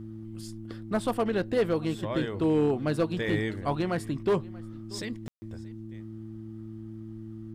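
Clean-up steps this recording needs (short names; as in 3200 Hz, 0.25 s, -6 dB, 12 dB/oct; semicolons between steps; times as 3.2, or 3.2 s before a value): clip repair -18.5 dBFS; de-hum 110.3 Hz, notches 3; room tone fill 5.28–5.42; inverse comb 0.633 s -23 dB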